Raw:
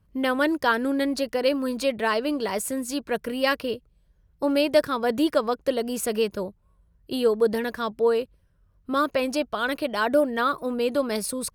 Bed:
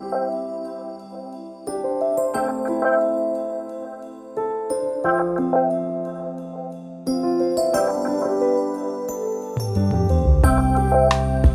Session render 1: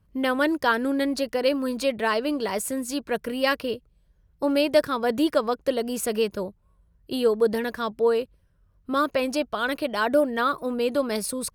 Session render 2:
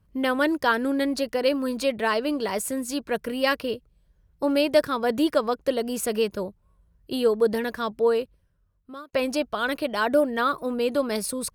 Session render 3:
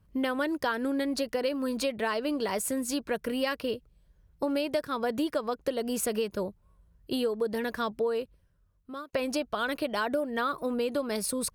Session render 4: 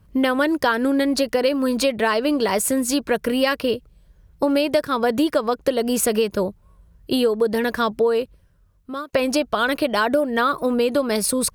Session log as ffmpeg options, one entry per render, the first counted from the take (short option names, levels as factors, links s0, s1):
-af anull
-filter_complex "[0:a]asplit=2[s0][s1];[s0]atrim=end=9.13,asetpts=PTS-STARTPTS,afade=t=out:st=8.16:d=0.97[s2];[s1]atrim=start=9.13,asetpts=PTS-STARTPTS,afade=t=in:d=0.004:c=hsin[s3];[s2][s3]concat=n=2:v=0:a=1"
-af "acompressor=threshold=0.0501:ratio=6"
-af "volume=3.16"